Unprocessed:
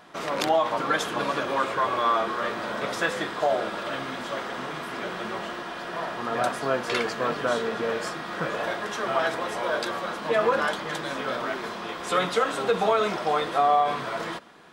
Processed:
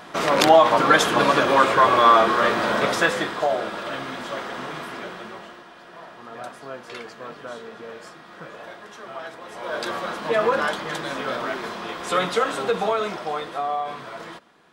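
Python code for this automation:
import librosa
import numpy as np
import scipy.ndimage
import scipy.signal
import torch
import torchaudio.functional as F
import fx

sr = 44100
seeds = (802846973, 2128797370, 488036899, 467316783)

y = fx.gain(x, sr, db=fx.line((2.76, 9.0), (3.53, 1.0), (4.82, 1.0), (5.7, -10.5), (9.41, -10.5), (9.89, 2.0), (12.52, 2.0), (13.65, -5.5)))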